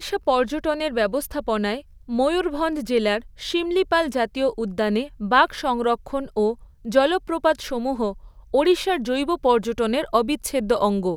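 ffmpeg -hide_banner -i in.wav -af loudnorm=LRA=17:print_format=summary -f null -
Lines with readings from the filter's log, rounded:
Input Integrated:    -22.3 LUFS
Input True Peak:      -4.3 dBTP
Input LRA:             1.2 LU
Input Threshold:     -32.4 LUFS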